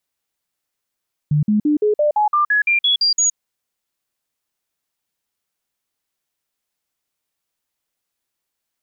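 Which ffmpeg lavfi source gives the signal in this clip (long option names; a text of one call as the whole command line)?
ffmpeg -f lavfi -i "aevalsrc='0.237*clip(min(mod(t,0.17),0.12-mod(t,0.17))/0.005,0,1)*sin(2*PI*149*pow(2,floor(t/0.17)/2)*mod(t,0.17))':duration=2.04:sample_rate=44100" out.wav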